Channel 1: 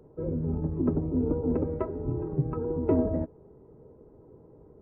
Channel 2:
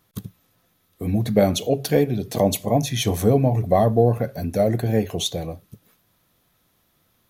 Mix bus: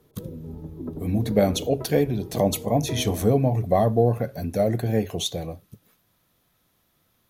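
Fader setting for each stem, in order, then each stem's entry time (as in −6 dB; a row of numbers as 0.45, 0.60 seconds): −7.5, −2.5 decibels; 0.00, 0.00 seconds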